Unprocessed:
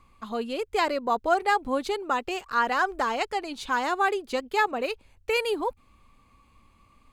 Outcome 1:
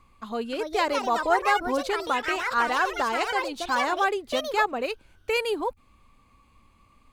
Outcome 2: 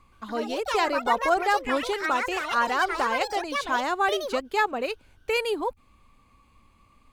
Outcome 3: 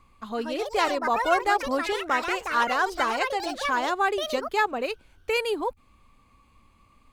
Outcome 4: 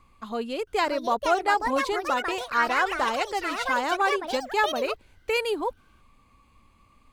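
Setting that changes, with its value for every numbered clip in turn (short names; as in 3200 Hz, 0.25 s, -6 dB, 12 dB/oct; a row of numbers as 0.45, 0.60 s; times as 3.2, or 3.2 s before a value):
echoes that change speed, time: 0.359, 0.121, 0.214, 0.671 s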